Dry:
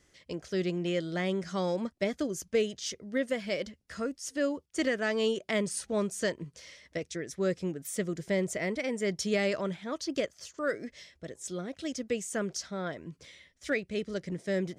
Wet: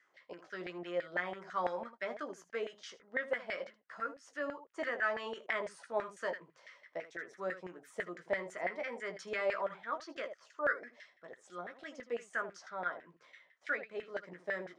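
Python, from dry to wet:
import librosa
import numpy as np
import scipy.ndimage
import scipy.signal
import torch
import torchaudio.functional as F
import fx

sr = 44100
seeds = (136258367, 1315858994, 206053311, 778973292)

p1 = scipy.signal.sosfilt(scipy.signal.butter(2, 140.0, 'highpass', fs=sr, output='sos'), x)
p2 = p1 + fx.room_early_taps(p1, sr, ms=(17, 78), db=(-6.0, -12.0), dry=0)
p3 = fx.filter_lfo_bandpass(p2, sr, shape='saw_down', hz=6.0, low_hz=700.0, high_hz=1800.0, q=3.9)
y = p3 * 10.0 ** (6.0 / 20.0)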